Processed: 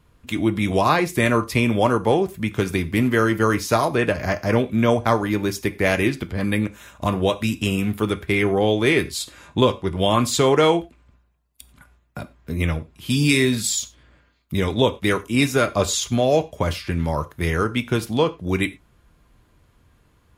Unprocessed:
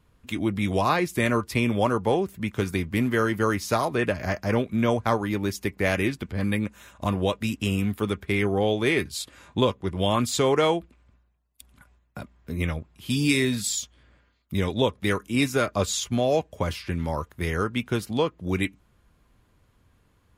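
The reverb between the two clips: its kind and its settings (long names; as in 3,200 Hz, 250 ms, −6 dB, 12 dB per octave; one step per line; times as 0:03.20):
reverb whose tail is shaped and stops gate 130 ms falling, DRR 12 dB
level +4.5 dB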